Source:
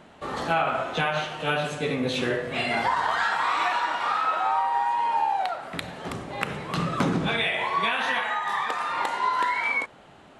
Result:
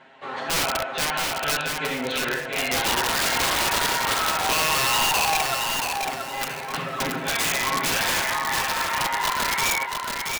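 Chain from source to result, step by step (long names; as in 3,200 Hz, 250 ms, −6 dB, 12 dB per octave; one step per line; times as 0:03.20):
low-pass filter 2,000 Hz 12 dB per octave
spectral tilt +4.5 dB per octave
notch filter 1,200 Hz, Q 10
comb filter 7.5 ms, depth 91%
wrap-around overflow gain 18 dB
on a send: repeating echo 677 ms, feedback 31%, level −4.5 dB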